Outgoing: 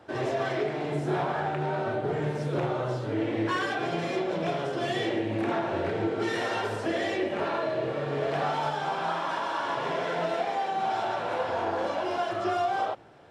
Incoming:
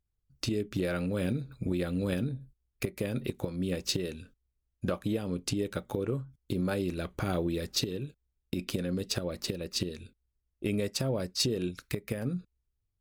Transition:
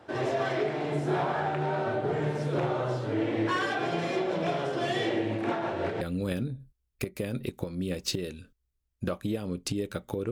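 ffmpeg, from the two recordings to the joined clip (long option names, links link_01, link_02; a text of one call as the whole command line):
ffmpeg -i cue0.wav -i cue1.wav -filter_complex "[0:a]asettb=1/sr,asplit=3[link_01][link_02][link_03];[link_01]atrim=end=5.324[link_04];[link_02]atrim=start=5.32:end=6.01,asetpts=PTS-STARTPTS,afade=type=in:duration=0.004:curve=qsin,afade=type=out:start_time=0.686:duration=0.004:curve=qsin,tremolo=f=5.7:d=0.41[link_05];[link_03]atrim=start=6.006[link_06];[link_04][link_05]acrossfade=duration=0.004:curve1=hsin:curve2=qsin[link_07];[link_07][link_06]acrossfade=duration=0.004:curve1=qsin:curve2=hsin,apad=whole_dur=10.31,atrim=end=10.31,atrim=end=6.012[link_08];[1:a]atrim=start=1.818:end=6.12[link_09];[link_08][link_09]acrossfade=duration=0.004:curve1=hsin:curve2=hsin" out.wav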